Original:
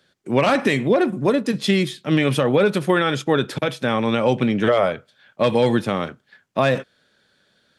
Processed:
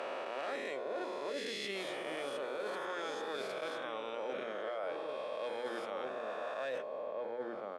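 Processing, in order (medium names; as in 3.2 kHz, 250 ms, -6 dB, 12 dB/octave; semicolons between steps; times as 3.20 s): reverse spectral sustain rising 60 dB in 2.16 s; band-pass filter 490 Hz, Q 1.2; differentiator; hum notches 60/120/180/240/300/360/420/480 Hz; echo from a far wall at 300 m, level -6 dB; reverse; compression 12:1, threshold -48 dBFS, peak gain reduction 16 dB; reverse; trim +12 dB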